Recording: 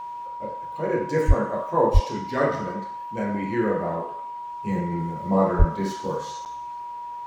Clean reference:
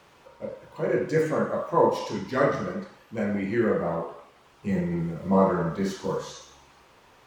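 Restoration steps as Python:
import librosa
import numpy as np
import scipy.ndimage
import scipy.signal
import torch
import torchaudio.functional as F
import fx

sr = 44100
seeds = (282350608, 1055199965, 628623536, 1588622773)

y = fx.notch(x, sr, hz=960.0, q=30.0)
y = fx.fix_deplosive(y, sr, at_s=(1.27, 1.93, 5.58))
y = fx.fix_interpolate(y, sr, at_s=(6.45,), length_ms=8.9)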